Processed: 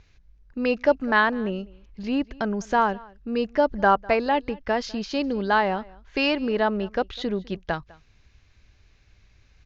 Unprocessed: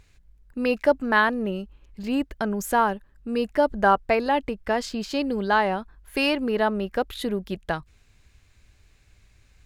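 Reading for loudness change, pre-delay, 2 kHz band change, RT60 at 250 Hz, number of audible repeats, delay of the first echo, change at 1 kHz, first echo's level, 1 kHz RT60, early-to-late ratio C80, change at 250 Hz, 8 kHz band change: 0.0 dB, no reverb, 0.0 dB, no reverb, 1, 202 ms, 0.0 dB, -23.5 dB, no reverb, no reverb, 0.0 dB, -6.5 dB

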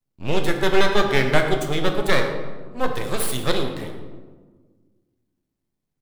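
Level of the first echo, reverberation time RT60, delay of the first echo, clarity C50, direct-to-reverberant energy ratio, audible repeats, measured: -15.0 dB, 1.5 s, 115 ms, 6.0 dB, 3.0 dB, 1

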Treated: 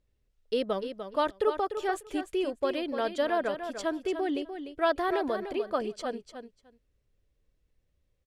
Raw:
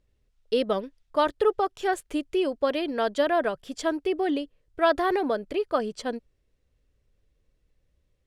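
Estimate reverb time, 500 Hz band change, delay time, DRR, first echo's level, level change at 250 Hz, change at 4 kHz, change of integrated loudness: no reverb, -4.0 dB, 297 ms, no reverb, -9.0 dB, -4.0 dB, -4.0 dB, -4.0 dB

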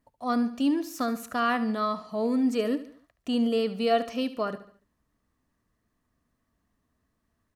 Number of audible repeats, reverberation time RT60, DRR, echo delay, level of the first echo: 3, no reverb, no reverb, 72 ms, -14.0 dB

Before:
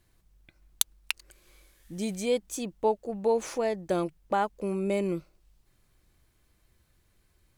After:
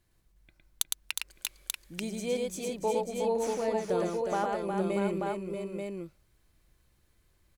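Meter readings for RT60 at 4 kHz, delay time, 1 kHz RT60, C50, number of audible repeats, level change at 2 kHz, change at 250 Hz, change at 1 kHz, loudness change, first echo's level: no reverb, 110 ms, no reverb, no reverb, 4, -1.0 dB, -1.0 dB, -1.5 dB, -2.0 dB, -3.0 dB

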